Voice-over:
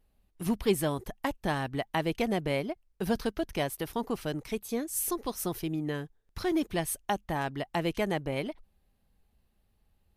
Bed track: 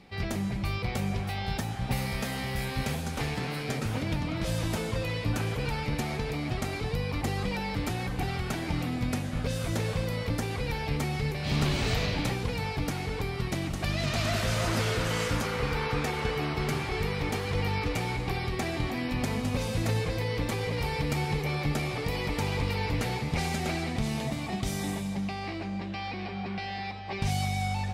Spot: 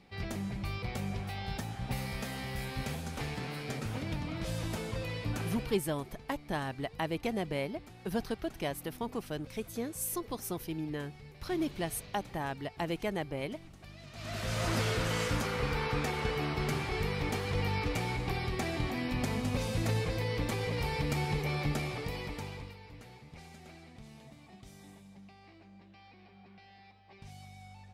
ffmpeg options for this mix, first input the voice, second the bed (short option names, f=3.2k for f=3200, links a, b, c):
-filter_complex "[0:a]adelay=5050,volume=-4.5dB[a];[1:a]volume=12dB,afade=t=out:st=5.49:d=0.33:silence=0.177828,afade=t=in:st=14.13:d=0.58:silence=0.125893,afade=t=out:st=21.64:d=1.14:silence=0.11885[b];[a][b]amix=inputs=2:normalize=0"